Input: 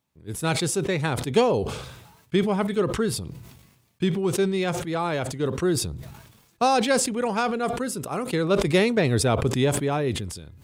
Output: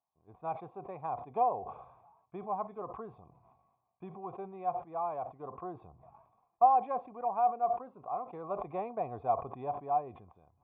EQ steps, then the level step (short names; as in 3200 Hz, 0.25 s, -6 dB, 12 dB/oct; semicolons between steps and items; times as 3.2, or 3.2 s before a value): vocal tract filter a; +3.0 dB